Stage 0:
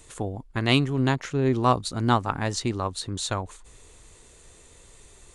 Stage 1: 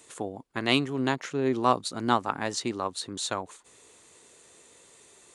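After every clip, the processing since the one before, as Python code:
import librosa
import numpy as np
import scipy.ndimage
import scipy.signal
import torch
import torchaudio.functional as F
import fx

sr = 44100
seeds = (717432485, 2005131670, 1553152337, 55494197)

y = scipy.signal.sosfilt(scipy.signal.butter(2, 220.0, 'highpass', fs=sr, output='sos'), x)
y = y * librosa.db_to_amplitude(-1.5)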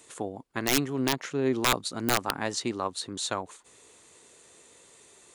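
y = (np.mod(10.0 ** (13.0 / 20.0) * x + 1.0, 2.0) - 1.0) / 10.0 ** (13.0 / 20.0)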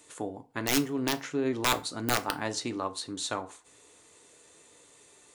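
y = fx.rev_fdn(x, sr, rt60_s=0.36, lf_ratio=0.9, hf_ratio=0.7, size_ms=20.0, drr_db=7.5)
y = y * librosa.db_to_amplitude(-2.5)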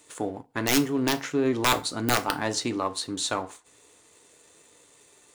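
y = fx.leveller(x, sr, passes=1)
y = y * librosa.db_to_amplitude(1.5)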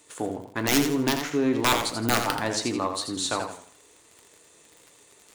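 y = fx.dmg_crackle(x, sr, seeds[0], per_s=55.0, level_db=-38.0)
y = fx.echo_warbled(y, sr, ms=84, feedback_pct=34, rate_hz=2.8, cents=102, wet_db=-7.0)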